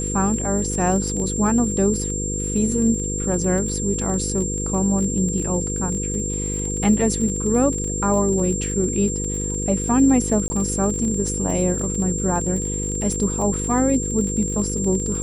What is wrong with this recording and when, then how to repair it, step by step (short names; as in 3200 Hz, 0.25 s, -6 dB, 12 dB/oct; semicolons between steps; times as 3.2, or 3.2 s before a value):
buzz 50 Hz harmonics 10 -27 dBFS
crackle 31/s -27 dBFS
tone 7400 Hz -26 dBFS
10.48–10.5 gap 20 ms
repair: de-click; de-hum 50 Hz, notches 10; notch 7400 Hz, Q 30; interpolate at 10.48, 20 ms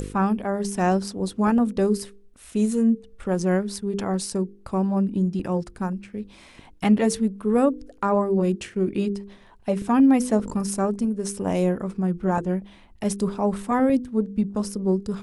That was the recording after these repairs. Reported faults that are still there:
none